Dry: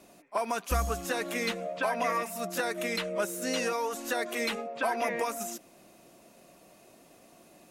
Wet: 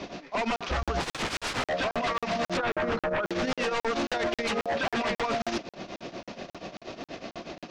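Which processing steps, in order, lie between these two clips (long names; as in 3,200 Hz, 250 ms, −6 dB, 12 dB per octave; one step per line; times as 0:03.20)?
variable-slope delta modulation 32 kbit/s
0:02.57–0:03.30: high shelf with overshoot 1,800 Hz −11 dB, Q 3
0:04.74–0:05.20: comb filter 5.1 ms, depth 54%
brickwall limiter −31.5 dBFS, peak gain reduction 15.5 dB
0:01.00–0:01.69: wrap-around overflow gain 39.5 dB
shaped tremolo triangle 8.3 Hz, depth 85%
sine wavefolder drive 14 dB, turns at −27 dBFS
high-frequency loss of the air 92 metres
regular buffer underruns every 0.27 s, samples 2,048, zero, from 0:00.56
level +3.5 dB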